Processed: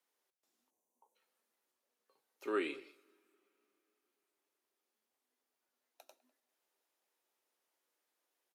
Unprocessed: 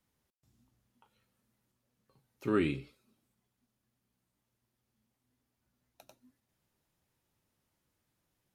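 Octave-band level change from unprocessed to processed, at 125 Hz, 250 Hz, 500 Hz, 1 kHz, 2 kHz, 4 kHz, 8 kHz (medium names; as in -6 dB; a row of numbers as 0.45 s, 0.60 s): under -30 dB, -10.5 dB, -4.0 dB, -2.5 dB, -2.5 dB, -2.5 dB, no reading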